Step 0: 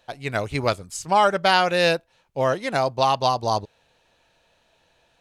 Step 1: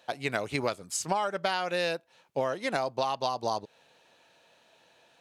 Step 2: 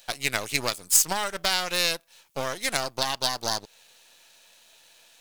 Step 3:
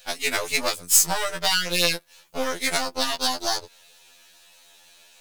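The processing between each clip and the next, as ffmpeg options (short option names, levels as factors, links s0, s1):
-af "highpass=180,acompressor=threshold=0.0447:ratio=10,volume=1.19"
-af "aeval=exprs='if(lt(val(0),0),0.251*val(0),val(0))':c=same,crystalizer=i=8:c=0,volume=0.891"
-af "afftfilt=real='re*2*eq(mod(b,4),0)':imag='im*2*eq(mod(b,4),0)':win_size=2048:overlap=0.75,volume=1.78"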